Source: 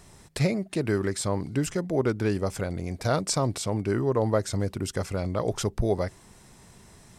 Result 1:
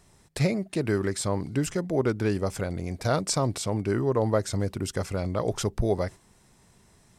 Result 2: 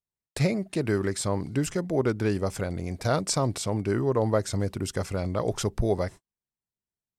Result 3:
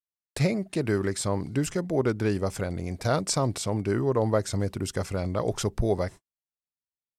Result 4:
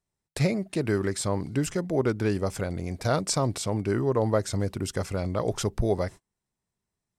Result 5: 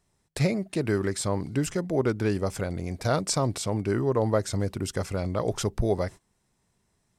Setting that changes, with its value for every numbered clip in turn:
gate, range: -7, -47, -60, -34, -20 dB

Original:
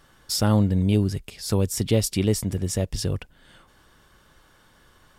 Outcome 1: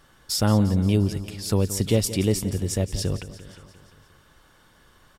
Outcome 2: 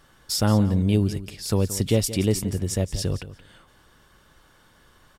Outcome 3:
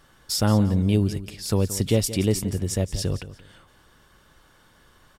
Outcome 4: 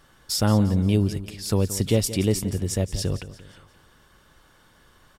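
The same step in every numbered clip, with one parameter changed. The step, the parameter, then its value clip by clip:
feedback echo, feedback: 61, 15, 24, 42%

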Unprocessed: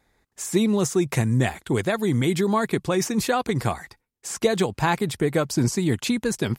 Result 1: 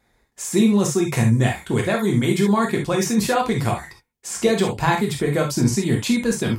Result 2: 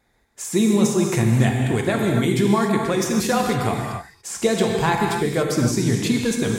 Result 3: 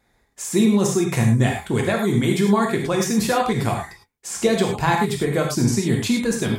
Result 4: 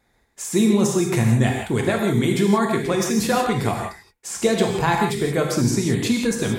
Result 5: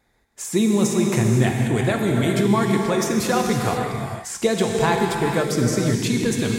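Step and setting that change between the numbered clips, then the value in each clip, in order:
non-linear reverb, gate: 90, 310, 130, 200, 540 ms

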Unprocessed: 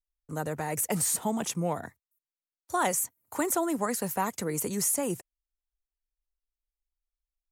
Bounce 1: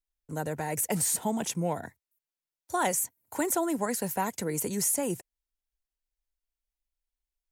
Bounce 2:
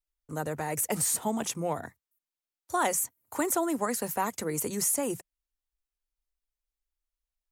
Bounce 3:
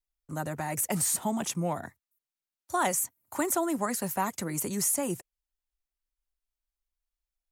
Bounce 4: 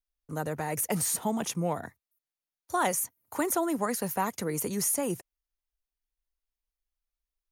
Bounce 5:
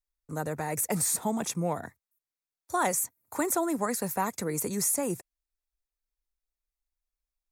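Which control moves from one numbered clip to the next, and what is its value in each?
notch, frequency: 1200, 180, 460, 7700, 3000 Hz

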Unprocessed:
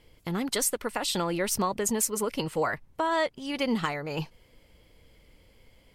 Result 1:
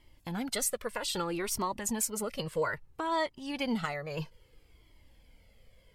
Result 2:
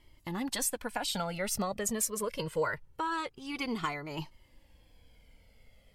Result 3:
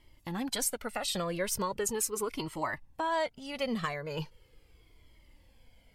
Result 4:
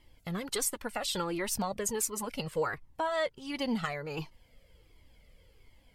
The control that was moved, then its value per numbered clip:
cascading flanger, rate: 0.61, 0.24, 0.39, 1.4 Hz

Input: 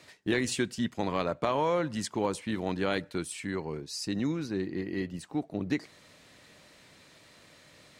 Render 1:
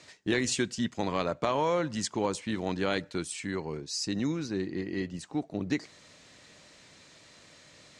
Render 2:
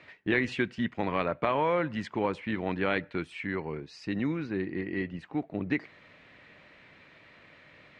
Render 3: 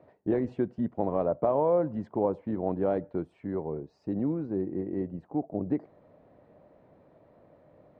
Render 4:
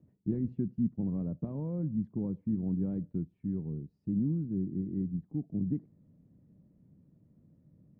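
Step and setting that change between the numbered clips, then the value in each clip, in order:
synth low-pass, frequency: 7000, 2300, 670, 190 Hz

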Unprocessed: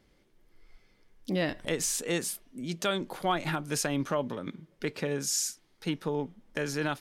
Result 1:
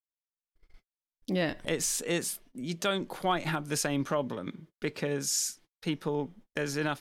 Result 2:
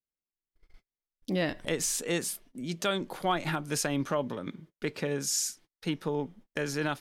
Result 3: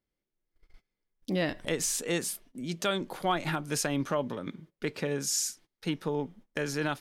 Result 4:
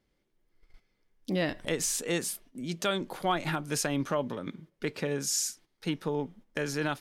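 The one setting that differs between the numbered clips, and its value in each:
gate, range: -54, -38, -22, -10 dB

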